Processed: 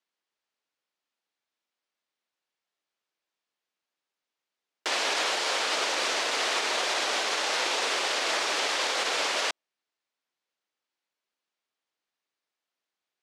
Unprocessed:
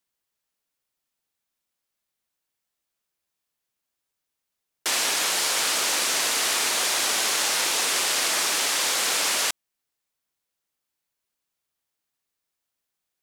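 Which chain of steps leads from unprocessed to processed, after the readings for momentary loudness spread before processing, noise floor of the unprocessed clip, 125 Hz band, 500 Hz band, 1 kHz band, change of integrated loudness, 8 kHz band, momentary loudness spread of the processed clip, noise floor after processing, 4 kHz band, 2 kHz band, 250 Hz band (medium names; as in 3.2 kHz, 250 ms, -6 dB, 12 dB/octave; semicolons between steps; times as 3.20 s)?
2 LU, -83 dBFS, no reading, +2.0 dB, 0.0 dB, -5.0 dB, -10.5 dB, 2 LU, under -85 dBFS, -4.0 dB, -2.0 dB, -2.0 dB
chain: dynamic bell 540 Hz, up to +5 dB, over -47 dBFS, Q 0.91; peak limiter -15.5 dBFS, peak gain reduction 6 dB; band-pass 270–4700 Hz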